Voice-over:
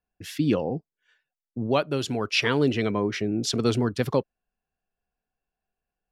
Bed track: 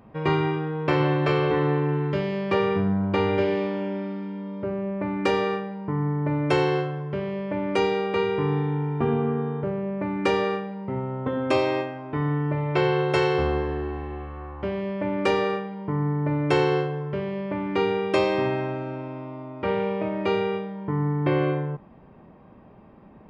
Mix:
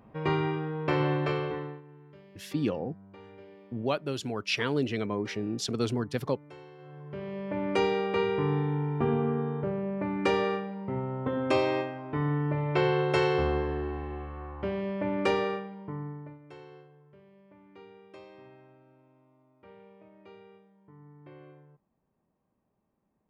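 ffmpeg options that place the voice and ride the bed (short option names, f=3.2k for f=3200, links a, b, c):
-filter_complex "[0:a]adelay=2150,volume=-6dB[a];[1:a]volume=19dB,afade=t=out:st=1.15:d=0.67:silence=0.0749894,afade=t=in:st=6.78:d=0.88:silence=0.0630957,afade=t=out:st=15.22:d=1.17:silence=0.0595662[b];[a][b]amix=inputs=2:normalize=0"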